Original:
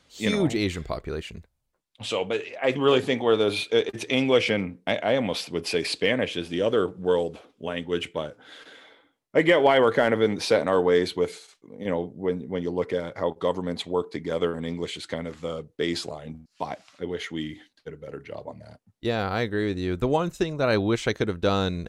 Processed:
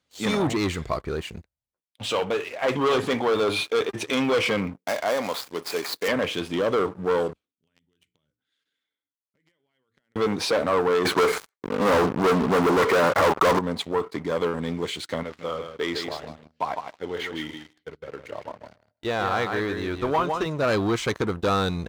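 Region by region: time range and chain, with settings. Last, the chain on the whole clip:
4.78–6.08 median filter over 15 samples + HPF 250 Hz 6 dB/oct + tilt +2.5 dB/oct
7.33–10.16 notches 60/120/180/240/300 Hz + compressor 10:1, threshold -32 dBFS + passive tone stack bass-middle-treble 6-0-2
11.05–13.59 HPF 210 Hz 6 dB/oct + resonant high shelf 2400 Hz -9.5 dB, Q 1.5 + sample leveller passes 5
15.23–20.46 LPF 4500 Hz + bell 160 Hz -8 dB 2.4 oct + feedback echo 0.157 s, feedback 16%, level -7 dB
whole clip: sample leveller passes 3; dynamic EQ 1100 Hz, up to +8 dB, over -36 dBFS, Q 1.8; HPF 45 Hz; gain -8.5 dB

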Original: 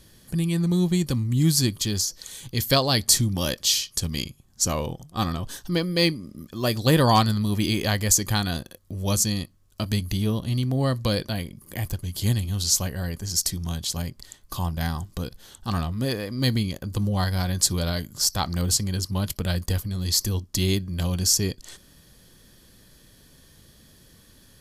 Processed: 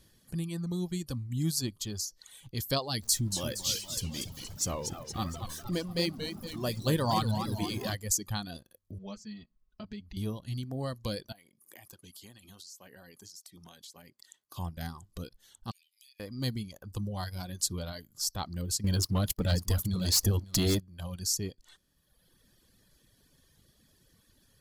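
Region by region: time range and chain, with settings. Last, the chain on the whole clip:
3.02–7.95 zero-crossing step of -30.5 dBFS + warbling echo 0.234 s, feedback 56%, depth 160 cents, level -6 dB
8.98–10.17 comb 4.7 ms, depth 97% + compressor 1.5:1, threshold -44 dBFS + air absorption 200 m
11.32–14.57 Bessel high-pass 320 Hz + compressor 10:1, threshold -36 dBFS
15.71–16.2 steep high-pass 2300 Hz 48 dB/oct + compressor 10:1, threshold -45 dBFS
18.84–20.8 sample leveller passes 3 + echo 0.55 s -10.5 dB + mismatched tape noise reduction encoder only
whole clip: reverb removal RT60 1.3 s; dynamic EQ 2100 Hz, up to -4 dB, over -41 dBFS, Q 1; gain -9 dB

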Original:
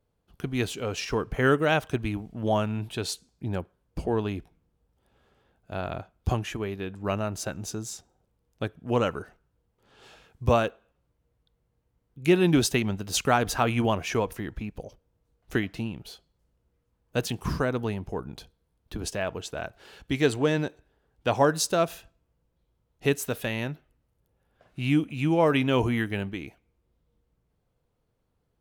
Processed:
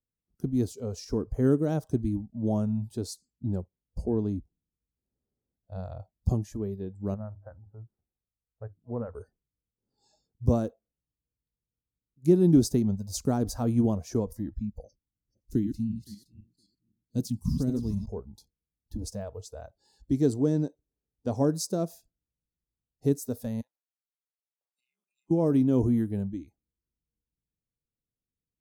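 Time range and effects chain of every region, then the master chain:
7.14–9.15 steep low-pass 2000 Hz + bell 260 Hz -7.5 dB 2.6 oct + notches 50/100/150/200/250/300/350 Hz
14.86–18.06 regenerating reverse delay 0.258 s, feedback 43%, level -7 dB + band shelf 890 Hz -9 dB 2.4 oct
23.61–25.31 HPF 860 Hz 24 dB/oct + ring modulator 110 Hz + compressor 5:1, threshold -53 dBFS
whole clip: spectral noise reduction 20 dB; EQ curve 120 Hz 0 dB, 260 Hz +3 dB, 2800 Hz -30 dB, 4900 Hz -7 dB; gain +1 dB

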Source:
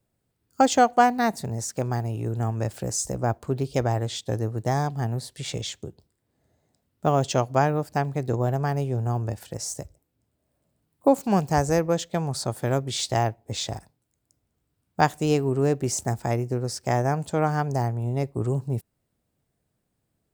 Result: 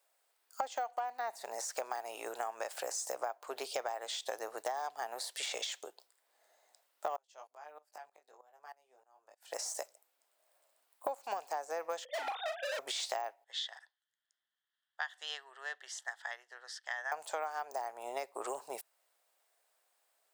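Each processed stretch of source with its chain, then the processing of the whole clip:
7.16–9.53 flipped gate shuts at -22 dBFS, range -25 dB + doubler 20 ms -5.5 dB + dB-ramp tremolo swelling 3.2 Hz, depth 19 dB
12.05–12.79 sine-wave speech + overloaded stage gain 34 dB + doubler 38 ms -7 dB
13.44–17.12 double band-pass 2400 Hz, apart 0.85 oct + tremolo 2.2 Hz, depth 29%
whole clip: de-esser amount 95%; HPF 650 Hz 24 dB/oct; compressor 12:1, threshold -40 dBFS; gain +6 dB

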